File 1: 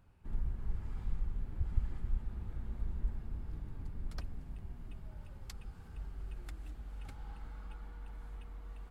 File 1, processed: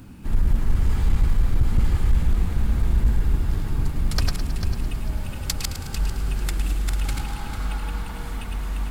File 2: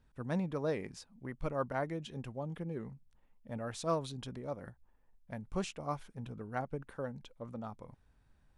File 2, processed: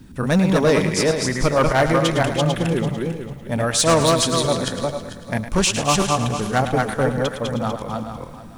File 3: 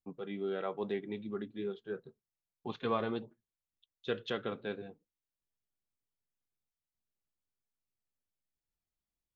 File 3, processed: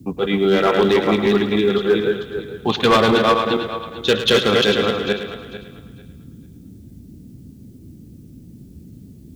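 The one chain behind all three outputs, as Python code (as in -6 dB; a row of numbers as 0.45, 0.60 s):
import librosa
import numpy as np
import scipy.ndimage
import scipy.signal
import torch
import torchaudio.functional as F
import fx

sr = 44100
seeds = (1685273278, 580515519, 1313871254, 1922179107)

p1 = fx.reverse_delay_fb(x, sr, ms=223, feedback_pct=44, wet_db=-2.5)
p2 = fx.high_shelf(p1, sr, hz=2600.0, db=11.0)
p3 = fx.quant_float(p2, sr, bits=6)
p4 = np.clip(p3, -10.0 ** (-28.5 / 20.0), 10.0 ** (-28.5 / 20.0))
p5 = fx.dmg_noise_band(p4, sr, seeds[0], low_hz=52.0, high_hz=270.0, level_db=-60.0)
p6 = p5 + fx.echo_thinned(p5, sr, ms=108, feedback_pct=54, hz=420.0, wet_db=-10.0, dry=0)
y = p6 * 10.0 ** (-20 / 20.0) / np.sqrt(np.mean(np.square(p6)))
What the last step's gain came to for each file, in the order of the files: +16.5, +17.5, +19.5 dB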